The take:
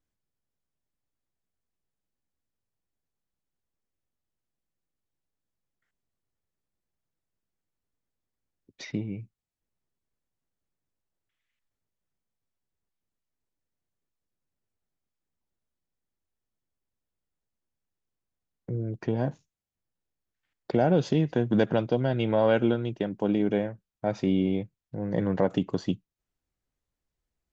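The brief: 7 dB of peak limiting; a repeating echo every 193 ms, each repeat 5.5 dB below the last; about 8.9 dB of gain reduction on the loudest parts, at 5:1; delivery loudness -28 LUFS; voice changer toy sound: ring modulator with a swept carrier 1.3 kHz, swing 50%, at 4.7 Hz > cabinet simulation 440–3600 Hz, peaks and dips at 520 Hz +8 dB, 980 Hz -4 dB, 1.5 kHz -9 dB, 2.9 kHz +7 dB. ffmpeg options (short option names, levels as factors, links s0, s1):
-af "acompressor=threshold=0.0398:ratio=5,alimiter=limit=0.0708:level=0:latency=1,aecho=1:1:193|386|579|772|965|1158|1351:0.531|0.281|0.149|0.079|0.0419|0.0222|0.0118,aeval=exprs='val(0)*sin(2*PI*1300*n/s+1300*0.5/4.7*sin(2*PI*4.7*n/s))':c=same,highpass=440,equalizer=f=520:t=q:w=4:g=8,equalizer=f=980:t=q:w=4:g=-4,equalizer=f=1500:t=q:w=4:g=-9,equalizer=f=2900:t=q:w=4:g=7,lowpass=f=3600:w=0.5412,lowpass=f=3600:w=1.3066,volume=2.99"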